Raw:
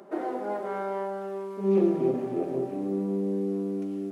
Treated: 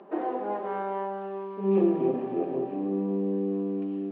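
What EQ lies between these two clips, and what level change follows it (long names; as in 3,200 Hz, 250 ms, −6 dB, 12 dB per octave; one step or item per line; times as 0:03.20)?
loudspeaker in its box 250–2,700 Hz, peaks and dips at 250 Hz −4 dB, 380 Hz −6 dB, 600 Hz −8 dB, 870 Hz −3 dB, 1,400 Hz −10 dB, 2,100 Hz −9 dB
+6.5 dB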